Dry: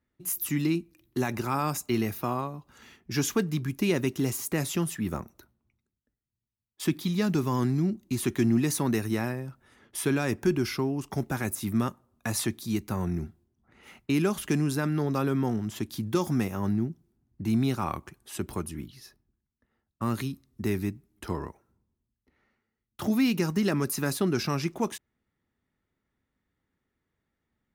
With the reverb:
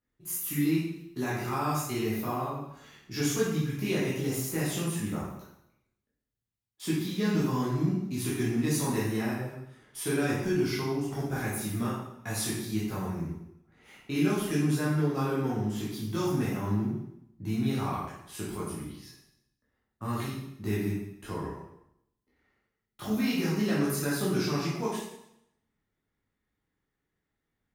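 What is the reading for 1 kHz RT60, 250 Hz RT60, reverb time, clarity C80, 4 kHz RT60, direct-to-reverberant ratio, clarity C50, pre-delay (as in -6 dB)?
0.80 s, 0.75 s, 0.75 s, 4.0 dB, 0.75 s, -8.0 dB, 0.0 dB, 6 ms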